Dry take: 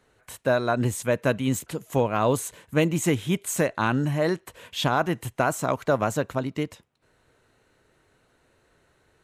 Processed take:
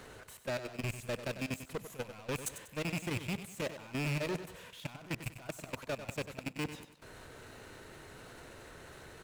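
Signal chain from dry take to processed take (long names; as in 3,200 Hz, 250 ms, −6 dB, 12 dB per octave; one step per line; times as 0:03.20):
loose part that buzzes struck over −30 dBFS, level −18 dBFS
brickwall limiter −20.5 dBFS, peak gain reduction 11 dB
soft clipping −24 dBFS, distortion −17 dB
reversed playback
downward compressor 12 to 1, threshold −44 dBFS, peak gain reduction 16.5 dB
reversed playback
leveller curve on the samples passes 5
output level in coarse steps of 18 dB
on a send: repeating echo 96 ms, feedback 39%, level −11 dB
on the sum: level +2 dB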